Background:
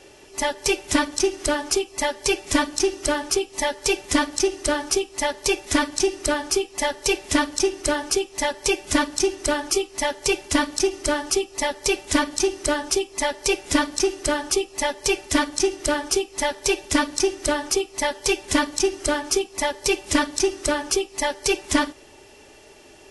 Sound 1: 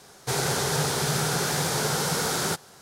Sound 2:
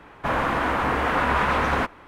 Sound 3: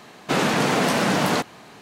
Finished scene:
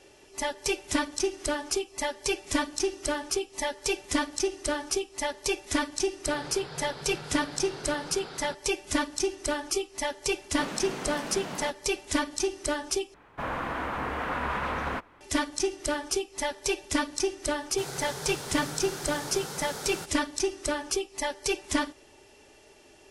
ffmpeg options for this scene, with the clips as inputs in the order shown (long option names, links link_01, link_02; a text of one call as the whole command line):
ffmpeg -i bed.wav -i cue0.wav -i cue1.wav -i cue2.wav -filter_complex "[1:a]asplit=2[link_01][link_02];[0:a]volume=-7dB[link_03];[link_01]aresample=11025,aresample=44100[link_04];[link_03]asplit=2[link_05][link_06];[link_05]atrim=end=13.144[link_07];[2:a]atrim=end=2.07,asetpts=PTS-STARTPTS,volume=-9dB[link_08];[link_06]atrim=start=15.206[link_09];[link_04]atrim=end=2.81,asetpts=PTS-STARTPTS,volume=-15dB,afade=type=in:duration=0.004:curve=hsin,afade=type=out:start_time=2.806:duration=0.004:curve=hsin,adelay=5990[link_10];[3:a]atrim=end=1.81,asetpts=PTS-STARTPTS,volume=-16.5dB,afade=type=in:duration=0.004:curve=hsin,afade=type=out:start_time=1.806:duration=0.004:curve=hsin,adelay=10290[link_11];[link_02]atrim=end=2.81,asetpts=PTS-STARTPTS,volume=-12dB,afade=type=in:duration=0.004:curve=hsin,afade=type=out:start_time=2.806:duration=0.004:curve=hsin,adelay=17500[link_12];[link_07][link_08]acrossfade=duration=0.004:curve1=hsin:curve2=hsin[link_13];[link_13][link_09]acrossfade=duration=0.004:curve1=hsin:curve2=hsin[link_14];[link_14][link_10][link_11][link_12]amix=inputs=4:normalize=0" out.wav